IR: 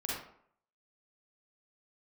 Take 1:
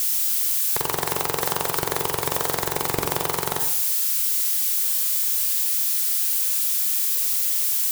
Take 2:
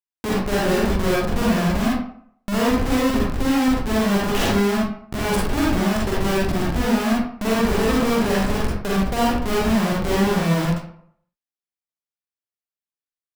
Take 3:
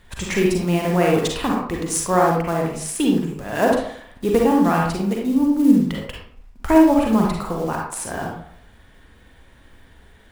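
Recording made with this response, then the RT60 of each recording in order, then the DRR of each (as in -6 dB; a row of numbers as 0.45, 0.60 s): 2; 0.65, 0.65, 0.65 s; 5.0, -5.5, -1.0 dB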